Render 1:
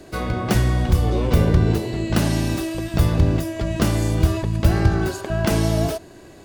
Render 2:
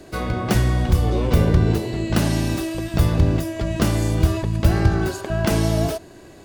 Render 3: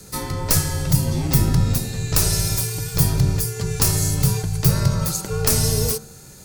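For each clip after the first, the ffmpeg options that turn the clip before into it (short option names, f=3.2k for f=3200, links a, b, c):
-af anull
-af "bandreject=f=60.91:t=h:w=4,bandreject=f=121.82:t=h:w=4,bandreject=f=182.73:t=h:w=4,bandreject=f=243.64:t=h:w=4,bandreject=f=304.55:t=h:w=4,bandreject=f=365.46:t=h:w=4,bandreject=f=426.37:t=h:w=4,bandreject=f=487.28:t=h:w=4,bandreject=f=548.19:t=h:w=4,bandreject=f=609.1:t=h:w=4,bandreject=f=670.01:t=h:w=4,bandreject=f=730.92:t=h:w=4,bandreject=f=791.83:t=h:w=4,bandreject=f=852.74:t=h:w=4,bandreject=f=913.65:t=h:w=4,bandreject=f=974.56:t=h:w=4,bandreject=f=1.03547k:t=h:w=4,bandreject=f=1.09638k:t=h:w=4,bandreject=f=1.15729k:t=h:w=4,bandreject=f=1.2182k:t=h:w=4,bandreject=f=1.27911k:t=h:w=4,bandreject=f=1.34002k:t=h:w=4,bandreject=f=1.40093k:t=h:w=4,bandreject=f=1.46184k:t=h:w=4,bandreject=f=1.52275k:t=h:w=4,bandreject=f=1.58366k:t=h:w=4,bandreject=f=1.64457k:t=h:w=4,bandreject=f=1.70548k:t=h:w=4,bandreject=f=1.76639k:t=h:w=4,afreqshift=-210,aexciter=amount=5.7:drive=2.9:freq=4.5k,volume=-1dB"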